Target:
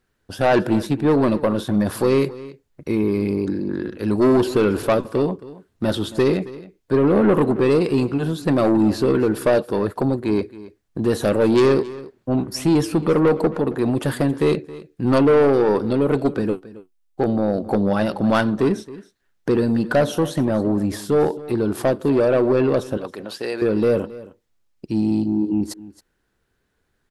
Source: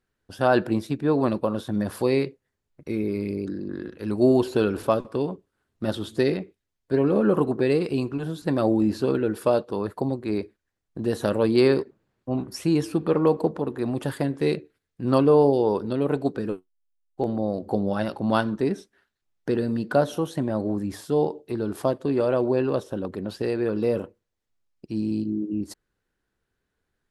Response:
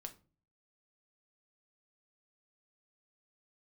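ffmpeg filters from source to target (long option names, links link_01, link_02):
-filter_complex "[0:a]asettb=1/sr,asplit=3[link_01][link_02][link_03];[link_01]atrim=end=22.974[link_04];[link_02]atrim=start=22.97:end=23.62,asetpts=PTS-STARTPTS,afade=type=in:duration=0.004:curve=qsin,afade=type=out:start_time=0.646:duration=0.004:curve=qsin,highpass=frequency=1000:poles=1[link_05];[link_03]atrim=start=23.616[link_06];[link_04][link_05]acrossfade=duration=0.004:curve1=hsin:curve2=qsin[link_07];[link_07][link_06]acrossfade=duration=0.004:curve1=qsin:curve2=hsin,asoftclip=type=tanh:threshold=-18.5dB,aecho=1:1:271:0.126,volume=8dB"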